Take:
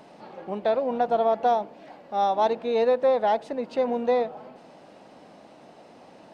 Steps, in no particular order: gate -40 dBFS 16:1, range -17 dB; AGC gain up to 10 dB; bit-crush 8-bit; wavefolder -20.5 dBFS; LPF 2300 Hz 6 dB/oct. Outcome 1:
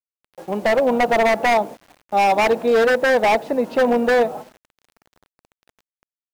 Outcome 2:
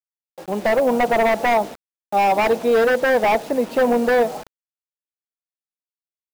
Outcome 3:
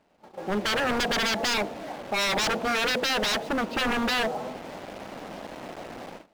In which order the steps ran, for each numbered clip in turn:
gate > LPF > wavefolder > AGC > bit-crush; gate > wavefolder > LPF > bit-crush > AGC; bit-crush > AGC > gate > LPF > wavefolder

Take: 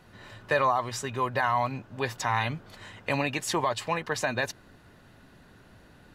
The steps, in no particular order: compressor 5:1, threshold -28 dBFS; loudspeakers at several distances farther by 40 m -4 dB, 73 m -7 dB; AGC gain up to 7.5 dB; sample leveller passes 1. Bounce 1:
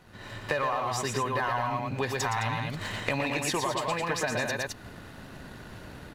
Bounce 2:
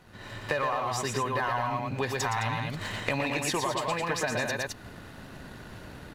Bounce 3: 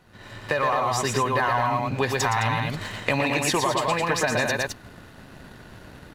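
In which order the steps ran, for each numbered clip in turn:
sample leveller > AGC > loudspeakers at several distances > compressor; sample leveller > loudspeakers at several distances > AGC > compressor; loudspeakers at several distances > sample leveller > compressor > AGC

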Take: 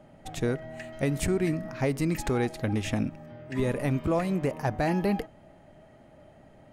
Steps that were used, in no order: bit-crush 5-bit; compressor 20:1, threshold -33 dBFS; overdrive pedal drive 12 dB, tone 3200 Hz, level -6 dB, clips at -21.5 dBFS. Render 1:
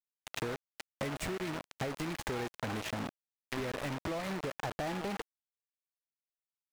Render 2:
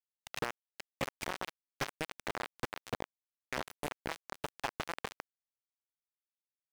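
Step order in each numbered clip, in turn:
bit-crush > overdrive pedal > compressor; compressor > bit-crush > overdrive pedal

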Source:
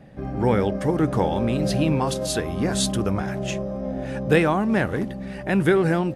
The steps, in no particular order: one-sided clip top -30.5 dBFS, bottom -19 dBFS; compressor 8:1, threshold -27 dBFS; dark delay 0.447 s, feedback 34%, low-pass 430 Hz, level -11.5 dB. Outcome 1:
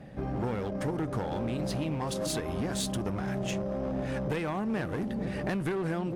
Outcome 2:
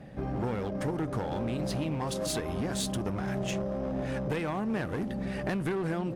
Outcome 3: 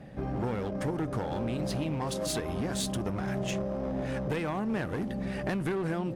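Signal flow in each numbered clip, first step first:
dark delay > compressor > one-sided clip; compressor > dark delay > one-sided clip; compressor > one-sided clip > dark delay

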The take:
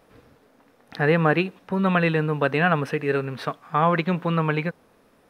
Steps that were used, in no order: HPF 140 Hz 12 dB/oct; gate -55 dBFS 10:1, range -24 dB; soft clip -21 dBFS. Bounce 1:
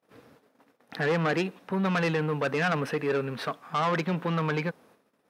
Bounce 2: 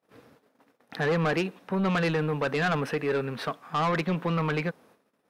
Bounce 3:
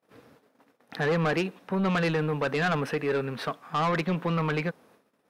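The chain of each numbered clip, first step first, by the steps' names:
soft clip > gate > HPF; HPF > soft clip > gate; gate > HPF > soft clip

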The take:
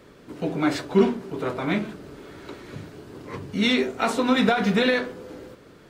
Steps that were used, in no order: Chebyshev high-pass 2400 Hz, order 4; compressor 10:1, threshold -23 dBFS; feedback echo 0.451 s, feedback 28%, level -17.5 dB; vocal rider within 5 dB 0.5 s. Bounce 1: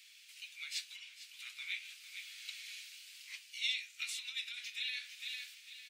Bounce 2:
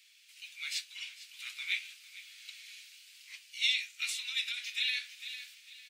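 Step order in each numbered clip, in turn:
feedback echo > compressor > vocal rider > Chebyshev high-pass; feedback echo > vocal rider > Chebyshev high-pass > compressor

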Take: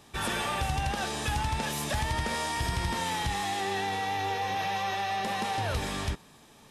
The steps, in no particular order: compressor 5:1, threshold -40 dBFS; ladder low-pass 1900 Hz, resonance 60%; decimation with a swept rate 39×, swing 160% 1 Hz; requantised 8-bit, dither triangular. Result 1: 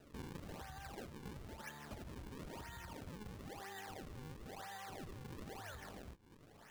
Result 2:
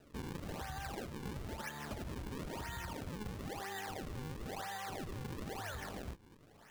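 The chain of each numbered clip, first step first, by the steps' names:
requantised > compressor > ladder low-pass > decimation with a swept rate; requantised > ladder low-pass > decimation with a swept rate > compressor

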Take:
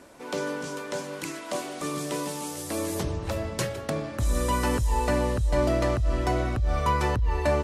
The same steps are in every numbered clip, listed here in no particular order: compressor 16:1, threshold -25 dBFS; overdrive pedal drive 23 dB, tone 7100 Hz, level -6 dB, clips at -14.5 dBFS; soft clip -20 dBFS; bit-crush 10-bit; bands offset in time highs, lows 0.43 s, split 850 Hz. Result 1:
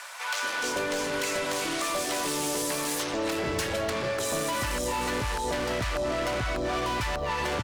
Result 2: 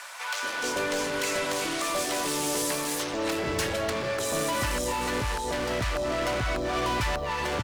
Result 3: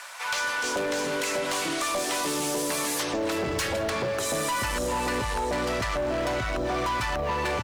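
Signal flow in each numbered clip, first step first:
overdrive pedal > bit-crush > soft clip > bands offset in time > compressor; overdrive pedal > soft clip > compressor > bands offset in time > bit-crush; bands offset in time > soft clip > overdrive pedal > compressor > bit-crush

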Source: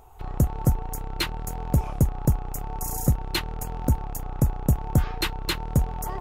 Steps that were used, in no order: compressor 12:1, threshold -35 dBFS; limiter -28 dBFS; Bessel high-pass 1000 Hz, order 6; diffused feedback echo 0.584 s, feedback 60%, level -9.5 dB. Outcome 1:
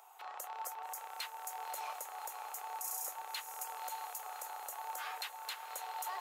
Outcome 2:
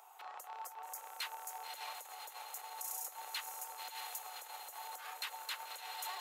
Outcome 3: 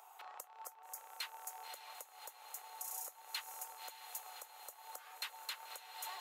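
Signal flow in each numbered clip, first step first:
Bessel high-pass > compressor > limiter > diffused feedback echo; diffused feedback echo > limiter > Bessel high-pass > compressor; diffused feedback echo > compressor > Bessel high-pass > limiter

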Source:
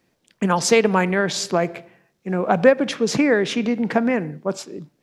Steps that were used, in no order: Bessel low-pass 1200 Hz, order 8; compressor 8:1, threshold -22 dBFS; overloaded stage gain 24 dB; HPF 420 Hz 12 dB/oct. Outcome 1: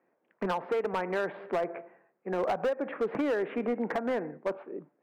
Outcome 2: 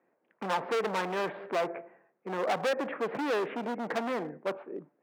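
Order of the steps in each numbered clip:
HPF > compressor > Bessel low-pass > overloaded stage; Bessel low-pass > overloaded stage > compressor > HPF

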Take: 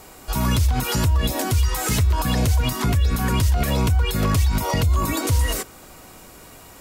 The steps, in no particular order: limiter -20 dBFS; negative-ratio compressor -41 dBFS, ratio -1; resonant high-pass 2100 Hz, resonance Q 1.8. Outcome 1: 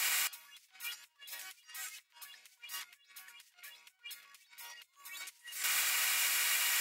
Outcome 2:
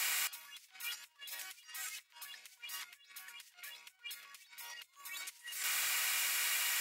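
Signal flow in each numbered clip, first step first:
negative-ratio compressor > limiter > resonant high-pass; limiter > negative-ratio compressor > resonant high-pass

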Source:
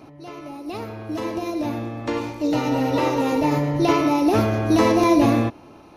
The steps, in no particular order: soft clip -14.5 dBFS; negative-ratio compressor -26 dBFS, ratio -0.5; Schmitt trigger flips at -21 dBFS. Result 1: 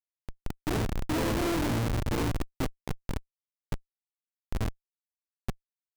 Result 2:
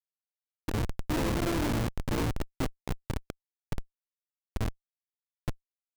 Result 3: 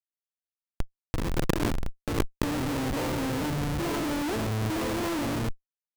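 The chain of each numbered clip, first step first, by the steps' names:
negative-ratio compressor > Schmitt trigger > soft clip; soft clip > negative-ratio compressor > Schmitt trigger; Schmitt trigger > soft clip > negative-ratio compressor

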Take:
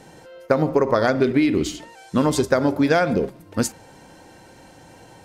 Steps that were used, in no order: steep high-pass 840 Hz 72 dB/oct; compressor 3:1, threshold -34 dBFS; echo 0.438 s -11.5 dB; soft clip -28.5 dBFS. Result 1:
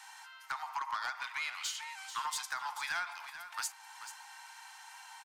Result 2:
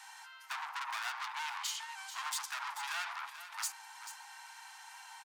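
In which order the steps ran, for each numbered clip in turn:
steep high-pass > compressor > soft clip > echo; soft clip > steep high-pass > compressor > echo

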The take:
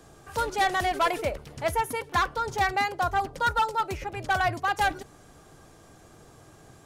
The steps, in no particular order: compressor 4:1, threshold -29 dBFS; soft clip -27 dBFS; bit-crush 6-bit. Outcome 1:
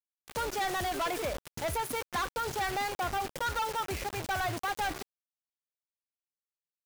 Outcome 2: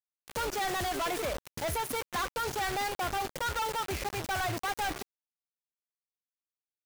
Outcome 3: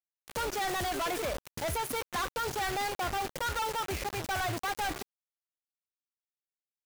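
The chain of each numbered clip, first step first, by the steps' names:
bit-crush > soft clip > compressor; soft clip > compressor > bit-crush; soft clip > bit-crush > compressor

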